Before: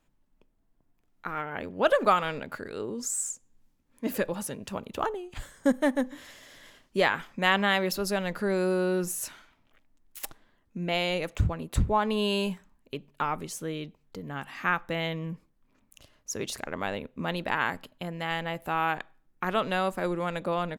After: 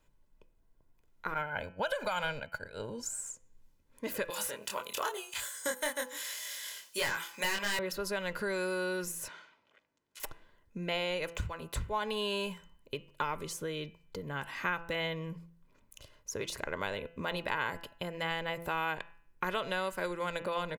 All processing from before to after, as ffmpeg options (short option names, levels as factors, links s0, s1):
-filter_complex "[0:a]asettb=1/sr,asplit=3[s0][s1][s2];[s0]atrim=end=1.344[s3];[s1]atrim=start=1.34:end=3.21,asetpts=PTS-STARTPTS,afade=t=in:d=0.004:c=qsin,afade=t=out:st=1.866:d=0.004:c=qsin,agate=range=0.0224:threshold=0.0224:ratio=3:release=100:detection=peak,aecho=1:1:1.3:0.7,atrim=end_sample=82467,acompressor=threshold=0.0794:ratio=6:attack=3.2:release=140:knee=1:detection=peak[s4];[s2]atrim=start=3.206[s5];[s3][s4]acrossfade=d=0.004:c1=hsin:c2=qsin[s6];[s6][s5]acrossfade=d=0.004:c1=qsin:c2=hsin,asettb=1/sr,asplit=3[s7][s8][s9];[s7]atrim=end=4.304[s10];[s8]atrim=start=4.3:end=7.79,asetpts=PTS-STARTPTS,afade=t=in:d=0.004:c=qsin,afade=t=out:st=3.486:d=0.004:c=qsin,aderivative,aeval=exprs='0.119*sin(PI/2*3.98*val(0)/0.119)':c=same,asplit=2[s11][s12];[s12]adelay=24,volume=0.794[s13];[s11][s13]amix=inputs=2:normalize=0,atrim=end_sample=153909[s14];[s9]atrim=start=7.786[s15];[s10][s14]acrossfade=d=0.004:c1=hsin:c2=qsin[s16];[s16][s15]acrossfade=d=0.004:c1=qsin:c2=hsin,asettb=1/sr,asplit=3[s17][s18][s19];[s17]atrim=end=9.284[s20];[s18]atrim=start=9.28:end=10.2,asetpts=PTS-STARTPTS,afade=t=in:d=0.004:c=qsin,afade=t=out:st=0.916:d=0.004:c=qsin,aeval=exprs='val(0)+0.000178*(sin(2*PI*50*n/s)+sin(2*PI*2*50*n/s)/2+sin(2*PI*3*50*n/s)/3+sin(2*PI*4*50*n/s)/4+sin(2*PI*5*50*n/s)/5)':c=same,highpass=270,lowpass=6300[s21];[s19]atrim=start=10.196[s22];[s20][s21]acrossfade=d=0.004:c1=hsin:c2=qsin[s23];[s23][s22]acrossfade=d=0.004:c1=qsin:c2=hsin,aecho=1:1:2:0.47,bandreject=f=168.3:t=h:w=4,bandreject=f=336.6:t=h:w=4,bandreject=f=504.9:t=h:w=4,bandreject=f=673.2:t=h:w=4,bandreject=f=841.5:t=h:w=4,bandreject=f=1009.8:t=h:w=4,bandreject=f=1178.1:t=h:w=4,bandreject=f=1346.4:t=h:w=4,bandreject=f=1514.7:t=h:w=4,bandreject=f=1683:t=h:w=4,bandreject=f=1851.3:t=h:w=4,bandreject=f=2019.6:t=h:w=4,bandreject=f=2187.9:t=h:w=4,bandreject=f=2356.2:t=h:w=4,bandreject=f=2524.5:t=h:w=4,bandreject=f=2692.8:t=h:w=4,bandreject=f=2861.1:t=h:w=4,bandreject=f=3029.4:t=h:w=4,acrossover=split=980|2200[s24][s25][s26];[s24]acompressor=threshold=0.0158:ratio=4[s27];[s25]acompressor=threshold=0.0141:ratio=4[s28];[s26]acompressor=threshold=0.0112:ratio=4[s29];[s27][s28][s29]amix=inputs=3:normalize=0"